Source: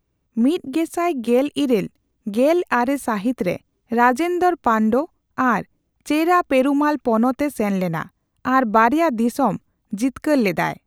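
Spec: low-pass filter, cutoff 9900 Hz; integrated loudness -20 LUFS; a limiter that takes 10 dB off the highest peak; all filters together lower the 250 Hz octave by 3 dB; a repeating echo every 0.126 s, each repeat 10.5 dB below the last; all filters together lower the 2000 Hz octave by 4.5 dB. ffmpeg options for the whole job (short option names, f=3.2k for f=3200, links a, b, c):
-af "lowpass=9.9k,equalizer=f=250:t=o:g=-3.5,equalizer=f=2k:t=o:g=-6,alimiter=limit=-14.5dB:level=0:latency=1,aecho=1:1:126|252|378:0.299|0.0896|0.0269,volume=4.5dB"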